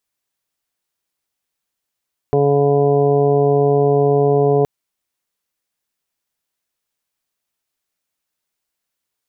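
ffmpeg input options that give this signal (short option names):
-f lavfi -i "aevalsrc='0.126*sin(2*PI*142*t)+0.0631*sin(2*PI*284*t)+0.224*sin(2*PI*426*t)+0.0596*sin(2*PI*568*t)+0.0891*sin(2*PI*710*t)+0.0158*sin(2*PI*852*t)+0.0251*sin(2*PI*994*t)':d=2.32:s=44100"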